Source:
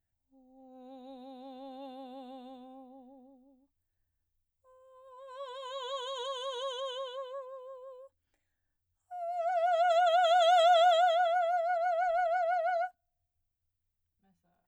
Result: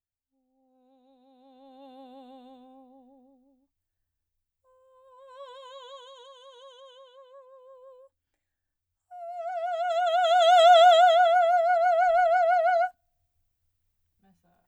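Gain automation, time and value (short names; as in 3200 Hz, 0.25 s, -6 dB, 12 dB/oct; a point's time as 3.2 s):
1.19 s -13 dB
2 s -1.5 dB
5.5 s -1.5 dB
6.31 s -12.5 dB
7.11 s -12.5 dB
7.86 s -2 dB
9.8 s -2 dB
10.7 s +8 dB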